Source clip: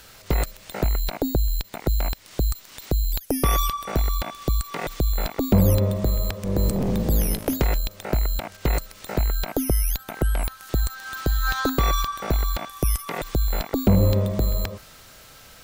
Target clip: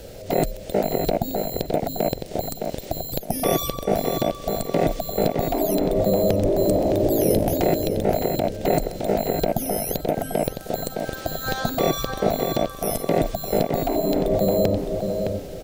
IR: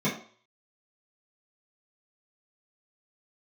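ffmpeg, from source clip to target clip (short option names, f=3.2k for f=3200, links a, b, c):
-filter_complex "[0:a]lowshelf=f=790:t=q:w=3:g=12,afftfilt=real='re*lt(hypot(re,im),1.12)':imag='im*lt(hypot(re,im),1.12)':win_size=1024:overlap=0.75,asplit=2[a][b];[b]adelay=613,lowpass=f=3.1k:p=1,volume=-5dB,asplit=2[c][d];[d]adelay=613,lowpass=f=3.1k:p=1,volume=0.29,asplit=2[e][f];[f]adelay=613,lowpass=f=3.1k:p=1,volume=0.29,asplit=2[g][h];[h]adelay=613,lowpass=f=3.1k:p=1,volume=0.29[i];[a][c][e][g][i]amix=inputs=5:normalize=0"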